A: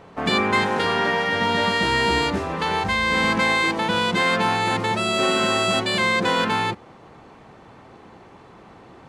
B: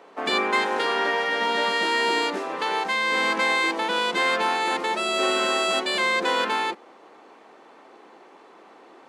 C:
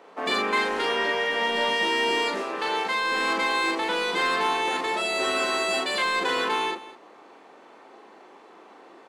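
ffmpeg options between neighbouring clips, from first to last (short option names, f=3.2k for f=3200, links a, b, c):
-af "highpass=f=290:w=0.5412,highpass=f=290:w=1.3066,volume=-2dB"
-filter_complex "[0:a]asplit=2[a][b];[b]volume=22.5dB,asoftclip=hard,volume=-22.5dB,volume=-10dB[c];[a][c]amix=inputs=2:normalize=0,asplit=2[d][e];[e]adelay=39,volume=-4dB[f];[d][f]amix=inputs=2:normalize=0,aecho=1:1:205:0.141,volume=-4dB"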